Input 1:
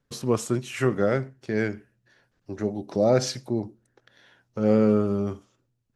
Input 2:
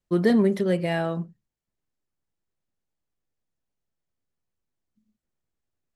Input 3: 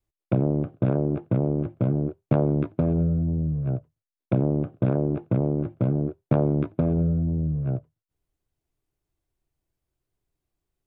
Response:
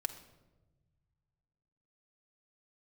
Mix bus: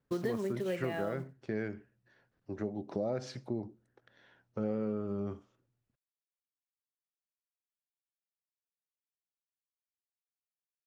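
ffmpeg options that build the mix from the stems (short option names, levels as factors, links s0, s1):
-filter_complex "[0:a]highpass=f=530:p=1,aemphasis=mode=reproduction:type=riaa,volume=0.596[s0];[1:a]bass=f=250:g=-10,treble=f=4000:g=-7,acrusher=bits=6:mode=log:mix=0:aa=0.000001,volume=0.668[s1];[s0][s1]amix=inputs=2:normalize=0,acompressor=threshold=0.0282:ratio=6,volume=1"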